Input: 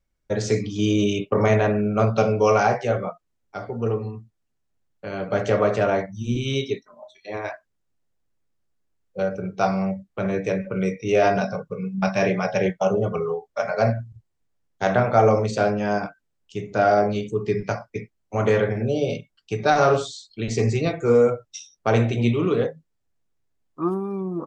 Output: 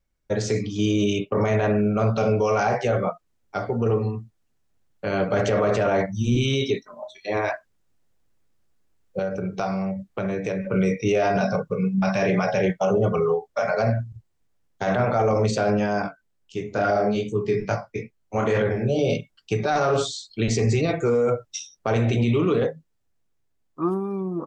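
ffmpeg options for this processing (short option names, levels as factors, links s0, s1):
-filter_complex "[0:a]asettb=1/sr,asplit=3[s0][s1][s2];[s0]atrim=end=9.194[s3];[s1]atrim=start=9.19:end=10.71,asetpts=PTS-STARTPTS,afade=t=in:d=0.004:c=qsin,afade=t=out:st=1.516:d=0.004:c=qsin,acompressor=threshold=0.0251:ratio=3:attack=3.2:release=140:knee=1:detection=peak[s4];[s2]atrim=start=10.706[s5];[s3][s4]acrossfade=d=0.004:c1=hsin:c2=qsin[s6];[s6][s5]acrossfade=d=0.004:c1=qsin:c2=hsin,asettb=1/sr,asplit=3[s7][s8][s9];[s7]atrim=end=16.024[s10];[s8]atrim=start=16.02:end=18.99,asetpts=PTS-STARTPTS,afade=t=in:d=0.004:c=qsin,afade=t=out:st=2.966:d=0.004:c=qsin,flanger=delay=19:depth=4.9:speed=2.3[s11];[s9]atrim=start=18.986[s12];[s10][s11]acrossfade=d=0.004:c1=hsin:c2=qsin[s13];[s13][s12]acrossfade=d=0.004:c1=qsin:c2=hsin,dynaudnorm=f=450:g=11:m=3.76,alimiter=limit=0.211:level=0:latency=1:release=22"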